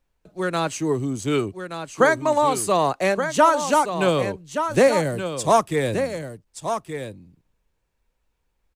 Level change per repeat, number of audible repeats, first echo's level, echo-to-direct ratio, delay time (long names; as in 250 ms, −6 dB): repeats not evenly spaced, 1, −8.5 dB, −8.5 dB, 1,174 ms